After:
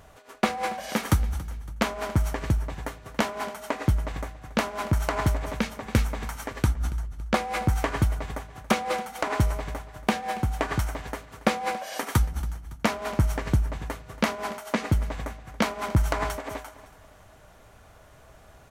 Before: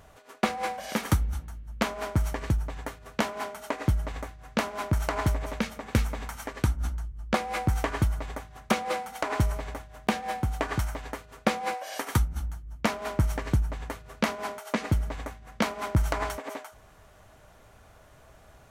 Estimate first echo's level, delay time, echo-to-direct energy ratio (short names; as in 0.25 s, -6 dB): -18.0 dB, 0.28 s, -17.0 dB